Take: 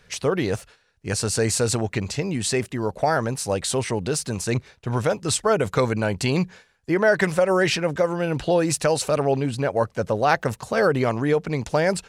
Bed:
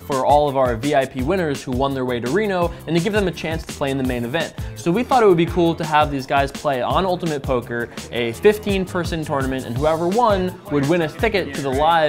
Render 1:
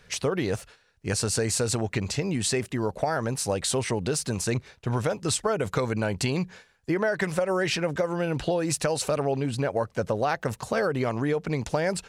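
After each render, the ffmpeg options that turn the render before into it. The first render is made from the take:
ffmpeg -i in.wav -af "acompressor=threshold=-22dB:ratio=6" out.wav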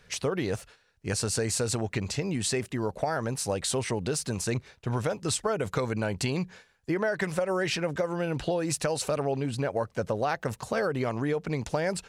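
ffmpeg -i in.wav -af "volume=-2.5dB" out.wav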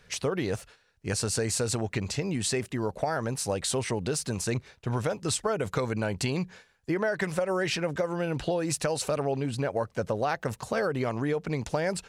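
ffmpeg -i in.wav -af anull out.wav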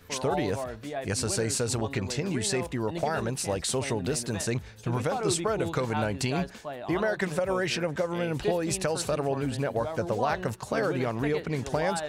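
ffmpeg -i in.wav -i bed.wav -filter_complex "[1:a]volume=-17.5dB[link_01];[0:a][link_01]amix=inputs=2:normalize=0" out.wav

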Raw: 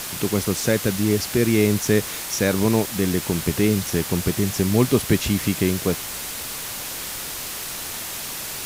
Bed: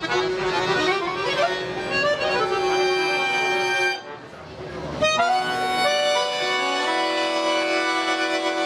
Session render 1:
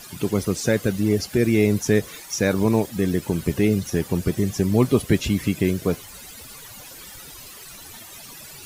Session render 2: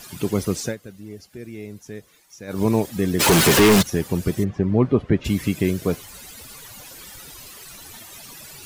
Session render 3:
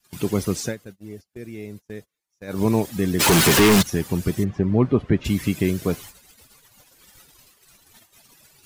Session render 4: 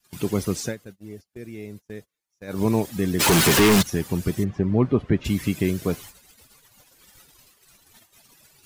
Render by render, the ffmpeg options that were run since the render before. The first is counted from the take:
ffmpeg -i in.wav -af "afftdn=noise_reduction=15:noise_floor=-31" out.wav
ffmpeg -i in.wav -filter_complex "[0:a]asplit=3[link_01][link_02][link_03];[link_01]afade=type=out:start_time=3.19:duration=0.02[link_04];[link_02]asplit=2[link_05][link_06];[link_06]highpass=frequency=720:poles=1,volume=42dB,asoftclip=type=tanh:threshold=-6.5dB[link_07];[link_05][link_07]amix=inputs=2:normalize=0,lowpass=frequency=5500:poles=1,volume=-6dB,afade=type=in:start_time=3.19:duration=0.02,afade=type=out:start_time=3.81:duration=0.02[link_08];[link_03]afade=type=in:start_time=3.81:duration=0.02[link_09];[link_04][link_08][link_09]amix=inputs=3:normalize=0,asplit=3[link_10][link_11][link_12];[link_10]afade=type=out:start_time=4.43:duration=0.02[link_13];[link_11]lowpass=1700,afade=type=in:start_time=4.43:duration=0.02,afade=type=out:start_time=5.24:duration=0.02[link_14];[link_12]afade=type=in:start_time=5.24:duration=0.02[link_15];[link_13][link_14][link_15]amix=inputs=3:normalize=0,asplit=3[link_16][link_17][link_18];[link_16]atrim=end=0.76,asetpts=PTS-STARTPTS,afade=type=out:start_time=0.6:duration=0.16:silence=0.133352[link_19];[link_17]atrim=start=0.76:end=2.47,asetpts=PTS-STARTPTS,volume=-17.5dB[link_20];[link_18]atrim=start=2.47,asetpts=PTS-STARTPTS,afade=type=in:duration=0.16:silence=0.133352[link_21];[link_19][link_20][link_21]concat=n=3:v=0:a=1" out.wav
ffmpeg -i in.wav -af "adynamicequalizer=threshold=0.0178:dfrequency=520:dqfactor=1.9:tfrequency=520:tqfactor=1.9:attack=5:release=100:ratio=0.375:range=2:mode=cutabove:tftype=bell,agate=range=-28dB:threshold=-38dB:ratio=16:detection=peak" out.wav
ffmpeg -i in.wav -af "volume=-1.5dB" out.wav

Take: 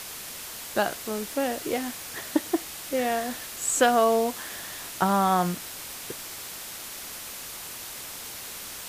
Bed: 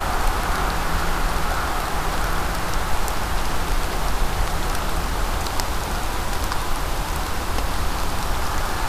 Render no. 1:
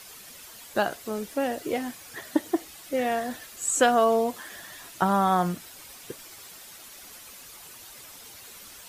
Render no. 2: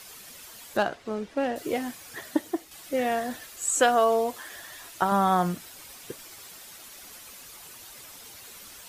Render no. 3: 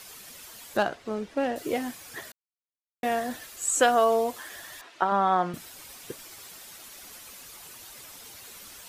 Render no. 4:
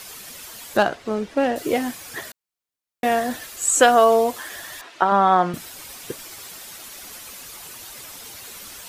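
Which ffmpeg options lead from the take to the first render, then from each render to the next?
ffmpeg -i in.wav -af "afftdn=noise_reduction=10:noise_floor=-39" out.wav
ffmpeg -i in.wav -filter_complex "[0:a]asettb=1/sr,asplit=3[link_01][link_02][link_03];[link_01]atrim=end=0.774[link_04];[link_02]atrim=start=0.77:end=1.56,asetpts=PTS-STARTPTS,afade=type=in:duration=0.004:curve=qsin,afade=type=out:start_time=0.786:duration=0.004:curve=qsin,adynamicsmooth=sensitivity=5:basefreq=3500[link_05];[link_03]atrim=start=1.556[link_06];[link_04][link_05]acrossfade=duration=0.004:curve1=hsin:curve2=qsin[link_07];[link_07][link_06]acrossfade=duration=0.004:curve1=qsin:curve2=hsin,asettb=1/sr,asplit=3[link_08][link_09][link_10];[link_08]atrim=end=3.504[link_11];[link_09]atrim=start=3.5:end=5.12,asetpts=PTS-STARTPTS,afade=type=in:duration=0.004:curve=qsin,afade=type=out:start_time=1.616:duration=0.004:curve=qsin,equalizer=frequency=190:width=1.5:gain=-7.5[link_12];[link_10]atrim=start=5.116[link_13];[link_11][link_12]acrossfade=duration=0.004:curve1=hsin:curve2=qsin[link_14];[link_14][link_13]acrossfade=duration=0.004:curve1=qsin:curve2=hsin,asplit=2[link_15][link_16];[link_15]atrim=end=2.71,asetpts=PTS-STARTPTS,afade=type=out:start_time=2.24:duration=0.47:silence=0.446684[link_17];[link_16]atrim=start=2.71,asetpts=PTS-STARTPTS,afade=type=in:duration=0.004:curve=hsin:silence=0.446684[link_18];[link_17][link_18]concat=n=2:v=0:a=1" out.wav
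ffmpeg -i in.wav -filter_complex "[0:a]asettb=1/sr,asplit=3[link_01][link_02][link_03];[link_01]atrim=end=4.814[link_04];[link_02]atrim=start=4.81:end=5.54,asetpts=PTS-STARTPTS,afade=type=in:duration=0.004:curve=qsin,afade=type=out:start_time=0.726:duration=0.004:curve=qsin,highpass=270,lowpass=3400[link_05];[link_03]atrim=start=5.536[link_06];[link_04][link_05]acrossfade=duration=0.004:curve1=hsin:curve2=qsin[link_07];[link_07][link_06]acrossfade=duration=0.004:curve1=qsin:curve2=hsin,asplit=3[link_08][link_09][link_10];[link_08]atrim=end=2.32,asetpts=PTS-STARTPTS,afade=type=out:start_time=2.316:duration=0.004:curve=hsin[link_11];[link_09]atrim=start=2.32:end=3.03,asetpts=PTS-STARTPTS,volume=0[link_12];[link_10]atrim=start=3.03,asetpts=PTS-STARTPTS,afade=type=in:duration=0.004:curve=hsin[link_13];[link_11][link_12][link_13]concat=n=3:v=0:a=1" out.wav
ffmpeg -i in.wav -af "volume=7dB,alimiter=limit=-3dB:level=0:latency=1" out.wav

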